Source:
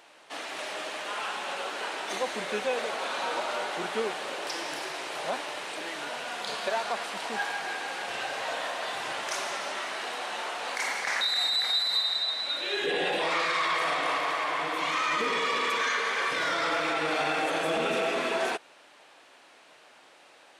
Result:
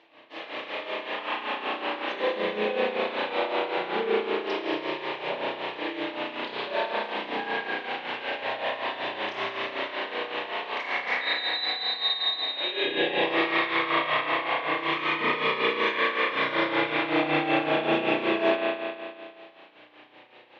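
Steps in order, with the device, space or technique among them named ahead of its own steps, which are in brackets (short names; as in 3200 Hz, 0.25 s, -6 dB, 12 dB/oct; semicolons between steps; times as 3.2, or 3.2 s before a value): combo amplifier with spring reverb and tremolo (spring tank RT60 2.1 s, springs 33 ms, chirp 25 ms, DRR -8.5 dB; tremolo 5.3 Hz, depth 66%; speaker cabinet 110–3900 Hz, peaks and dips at 120 Hz +6 dB, 170 Hz -5 dB, 320 Hz +6 dB, 720 Hz -4 dB, 1400 Hz -10 dB); gain -1.5 dB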